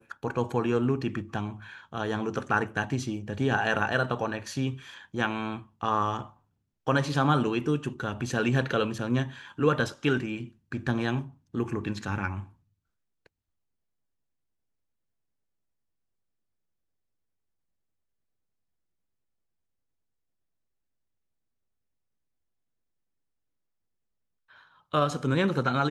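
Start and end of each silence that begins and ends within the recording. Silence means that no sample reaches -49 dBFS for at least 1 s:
13.26–24.50 s

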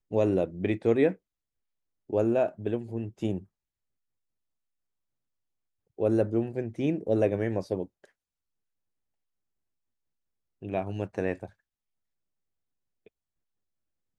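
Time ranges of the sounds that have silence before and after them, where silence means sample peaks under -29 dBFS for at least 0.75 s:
2.13–3.38 s
6.00–7.83 s
10.65–11.45 s

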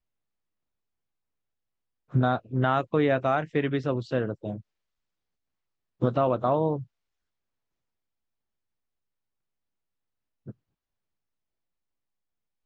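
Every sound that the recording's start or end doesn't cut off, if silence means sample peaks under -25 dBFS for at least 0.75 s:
2.15–4.52 s
6.02–6.76 s

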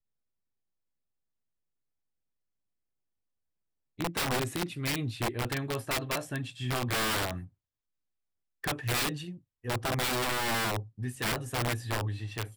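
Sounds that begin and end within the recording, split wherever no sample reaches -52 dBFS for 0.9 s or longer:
3.99–7.48 s

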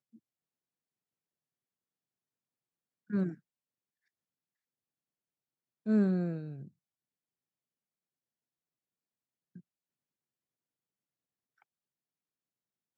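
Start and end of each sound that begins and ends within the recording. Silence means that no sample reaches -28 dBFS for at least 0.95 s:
3.14–3.28 s
5.88–6.30 s

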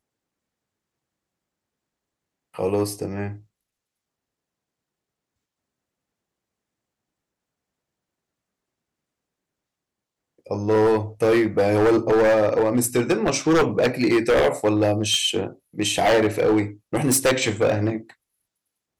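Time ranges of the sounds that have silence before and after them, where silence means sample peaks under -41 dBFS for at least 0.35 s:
2.54–3.40 s
10.46–18.11 s

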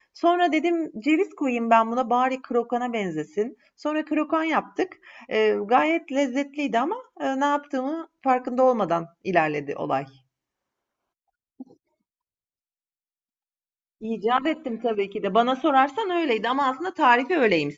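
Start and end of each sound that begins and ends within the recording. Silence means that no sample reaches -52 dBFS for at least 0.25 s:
11.60–11.74 s

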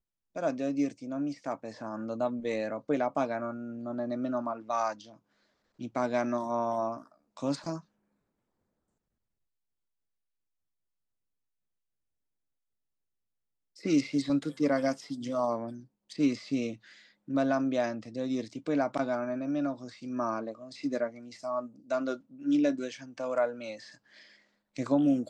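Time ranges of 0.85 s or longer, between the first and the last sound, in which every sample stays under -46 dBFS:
7.80–13.77 s

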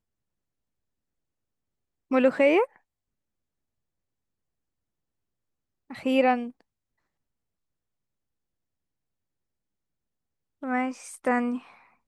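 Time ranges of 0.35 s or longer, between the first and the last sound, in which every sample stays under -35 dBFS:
2.65–5.91 s
6.49–10.63 s

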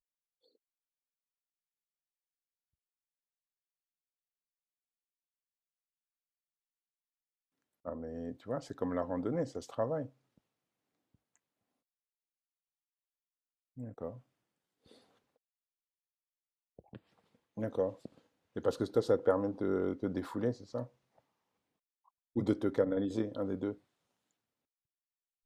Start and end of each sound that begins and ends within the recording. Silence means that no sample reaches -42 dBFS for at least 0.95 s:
7.85–10.06 s
13.78–14.16 s
16.79–20.85 s
22.36–23.73 s

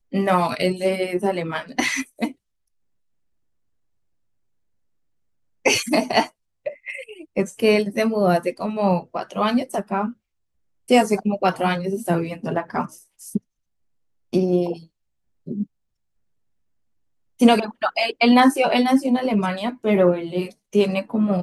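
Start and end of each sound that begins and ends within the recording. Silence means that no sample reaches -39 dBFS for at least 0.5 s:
5.65–10.13 s
10.88–13.38 s
14.33–14.84 s
15.47–15.64 s

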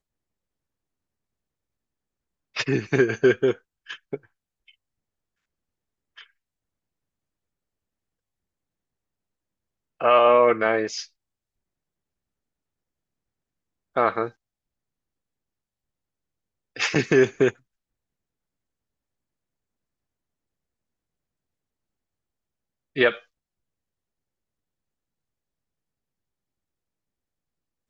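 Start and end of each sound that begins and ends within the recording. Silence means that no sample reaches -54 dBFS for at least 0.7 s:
2.54–4.74 s
6.17–6.27 s
10.00–11.09 s
13.95–14.33 s
16.76–17.59 s
22.96–23.25 s

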